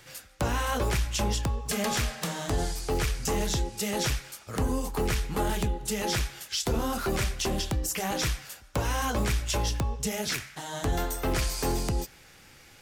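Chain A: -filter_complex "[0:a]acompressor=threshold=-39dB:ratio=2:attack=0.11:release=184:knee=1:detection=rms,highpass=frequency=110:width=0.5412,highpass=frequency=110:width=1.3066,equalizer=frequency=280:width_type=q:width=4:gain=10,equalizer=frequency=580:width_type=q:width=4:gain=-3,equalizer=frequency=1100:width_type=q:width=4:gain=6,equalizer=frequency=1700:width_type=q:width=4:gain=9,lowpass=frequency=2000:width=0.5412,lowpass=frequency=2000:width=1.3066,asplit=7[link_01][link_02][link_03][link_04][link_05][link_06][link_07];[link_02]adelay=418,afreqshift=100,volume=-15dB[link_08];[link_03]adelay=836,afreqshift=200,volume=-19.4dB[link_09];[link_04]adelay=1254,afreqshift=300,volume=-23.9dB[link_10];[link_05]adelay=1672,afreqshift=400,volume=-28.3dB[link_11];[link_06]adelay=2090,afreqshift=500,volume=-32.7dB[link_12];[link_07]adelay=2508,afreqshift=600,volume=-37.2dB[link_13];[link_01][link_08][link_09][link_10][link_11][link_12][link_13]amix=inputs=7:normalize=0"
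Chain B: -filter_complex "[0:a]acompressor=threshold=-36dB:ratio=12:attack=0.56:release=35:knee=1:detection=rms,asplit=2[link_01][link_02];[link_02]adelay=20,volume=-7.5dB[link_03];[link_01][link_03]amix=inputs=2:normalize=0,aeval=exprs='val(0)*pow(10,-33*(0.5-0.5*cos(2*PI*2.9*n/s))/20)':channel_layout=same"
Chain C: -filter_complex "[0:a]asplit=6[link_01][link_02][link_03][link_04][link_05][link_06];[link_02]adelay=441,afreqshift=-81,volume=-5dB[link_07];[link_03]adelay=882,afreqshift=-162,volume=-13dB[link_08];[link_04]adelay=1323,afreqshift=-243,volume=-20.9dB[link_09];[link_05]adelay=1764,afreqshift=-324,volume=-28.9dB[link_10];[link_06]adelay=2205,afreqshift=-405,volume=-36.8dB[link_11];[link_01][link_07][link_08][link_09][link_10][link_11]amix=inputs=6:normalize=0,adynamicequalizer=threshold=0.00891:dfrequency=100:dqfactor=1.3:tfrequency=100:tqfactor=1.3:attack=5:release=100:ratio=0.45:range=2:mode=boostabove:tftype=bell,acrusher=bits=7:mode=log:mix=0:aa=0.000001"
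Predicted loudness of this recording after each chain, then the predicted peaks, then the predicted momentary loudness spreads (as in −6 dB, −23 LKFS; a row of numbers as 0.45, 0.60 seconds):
−39.0, −47.0, −28.0 LKFS; −23.0, −30.5, −13.5 dBFS; 7, 6, 4 LU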